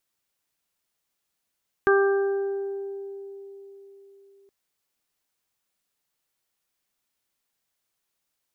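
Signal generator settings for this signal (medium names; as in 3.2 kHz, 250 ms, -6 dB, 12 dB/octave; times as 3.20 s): additive tone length 2.62 s, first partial 395 Hz, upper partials -11/-7/-5 dB, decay 4.07 s, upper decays 2.36/1.07/1.30 s, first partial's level -16 dB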